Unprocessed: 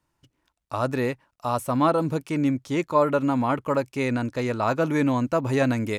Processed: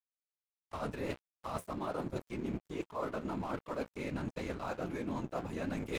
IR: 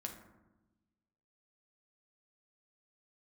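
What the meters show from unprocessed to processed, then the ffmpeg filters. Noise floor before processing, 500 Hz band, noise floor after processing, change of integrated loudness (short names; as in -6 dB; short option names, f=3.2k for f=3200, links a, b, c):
-76 dBFS, -15.0 dB, under -85 dBFS, -15.5 dB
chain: -af "afftfilt=real='hypot(re,im)*cos(2*PI*random(0))':imag='hypot(re,im)*sin(2*PI*random(1))':win_size=512:overlap=0.75,flanger=delay=9.7:depth=8.1:regen=-66:speed=1.4:shape=triangular,bandreject=f=1.9k:w=20,aeval=exprs='sgn(val(0))*max(abs(val(0))-0.00447,0)':c=same,areverse,acompressor=threshold=-42dB:ratio=12,areverse,volume=8dB"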